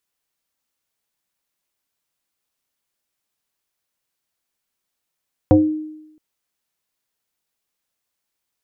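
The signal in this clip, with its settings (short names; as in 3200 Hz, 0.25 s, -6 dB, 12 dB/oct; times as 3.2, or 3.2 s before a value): FM tone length 0.67 s, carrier 309 Hz, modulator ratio 0.69, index 1.6, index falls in 0.34 s exponential, decay 0.89 s, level -6 dB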